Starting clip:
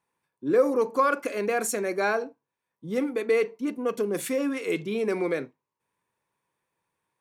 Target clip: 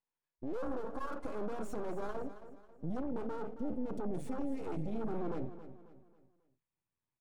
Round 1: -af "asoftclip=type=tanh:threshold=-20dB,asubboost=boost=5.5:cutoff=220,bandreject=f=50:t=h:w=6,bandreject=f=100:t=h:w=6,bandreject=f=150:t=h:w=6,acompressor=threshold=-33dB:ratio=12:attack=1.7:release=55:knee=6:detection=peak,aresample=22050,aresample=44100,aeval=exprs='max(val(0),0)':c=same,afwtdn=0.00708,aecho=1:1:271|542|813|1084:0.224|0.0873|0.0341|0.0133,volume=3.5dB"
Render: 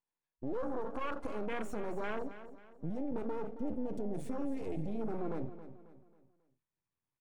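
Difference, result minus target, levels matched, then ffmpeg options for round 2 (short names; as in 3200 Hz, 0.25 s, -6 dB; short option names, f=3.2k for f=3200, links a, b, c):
soft clip: distortion -8 dB
-af "asoftclip=type=tanh:threshold=-31.5dB,asubboost=boost=5.5:cutoff=220,bandreject=f=50:t=h:w=6,bandreject=f=100:t=h:w=6,bandreject=f=150:t=h:w=6,acompressor=threshold=-33dB:ratio=12:attack=1.7:release=55:knee=6:detection=peak,aresample=22050,aresample=44100,aeval=exprs='max(val(0),0)':c=same,afwtdn=0.00708,aecho=1:1:271|542|813|1084:0.224|0.0873|0.0341|0.0133,volume=3.5dB"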